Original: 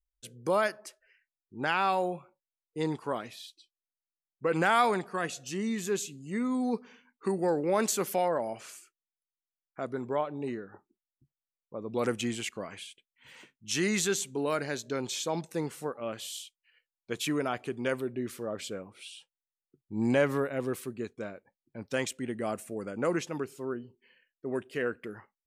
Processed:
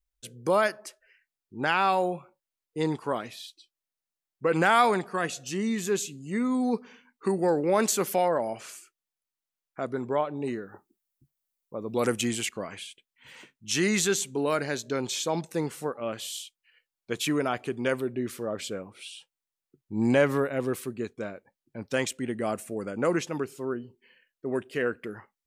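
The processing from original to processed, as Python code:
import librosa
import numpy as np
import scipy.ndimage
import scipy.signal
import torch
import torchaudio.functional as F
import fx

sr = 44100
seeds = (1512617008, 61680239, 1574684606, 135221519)

y = fx.high_shelf(x, sr, hz=8200.0, db=11.5, at=(10.45, 12.46))
y = y * librosa.db_to_amplitude(3.5)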